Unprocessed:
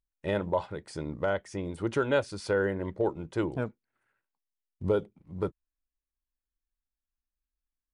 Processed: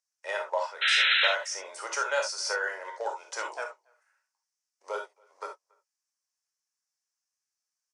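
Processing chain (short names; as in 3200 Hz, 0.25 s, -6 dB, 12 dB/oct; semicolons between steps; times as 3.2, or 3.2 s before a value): Bessel high-pass 1000 Hz, order 8; de-esser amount 90%; resonant high shelf 4500 Hz +8 dB, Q 3; 0.81–1.28 painted sound noise 1300–4100 Hz -30 dBFS; air absorption 76 m; speakerphone echo 0.28 s, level -29 dB; non-linear reverb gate 90 ms flat, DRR 1 dB; 1.33–3.64 three-band squash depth 40%; gain +5.5 dB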